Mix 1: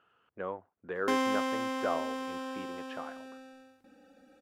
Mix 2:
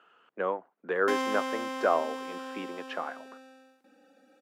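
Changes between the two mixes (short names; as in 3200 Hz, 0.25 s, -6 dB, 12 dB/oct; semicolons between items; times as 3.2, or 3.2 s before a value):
speech +8.0 dB; master: add Bessel high-pass 270 Hz, order 8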